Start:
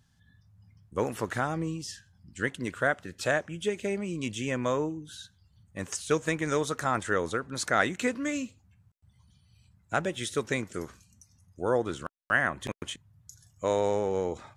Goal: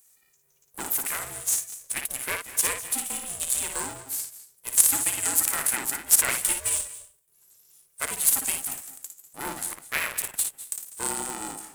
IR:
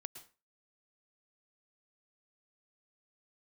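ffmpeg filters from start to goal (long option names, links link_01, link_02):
-filter_complex "[0:a]highpass=frequency=1200:poles=1,asetrate=54684,aresample=44100,asplit=2[link_01][link_02];[1:a]atrim=start_sample=2205,asetrate=33957,aresample=44100,adelay=56[link_03];[link_02][link_03]afir=irnorm=-1:irlink=0,volume=-2.5dB[link_04];[link_01][link_04]amix=inputs=2:normalize=0,aexciter=amount=6.5:drive=8.8:freq=6600,aeval=exprs='val(0)*sgn(sin(2*PI*270*n/s))':channel_layout=same,volume=-1dB"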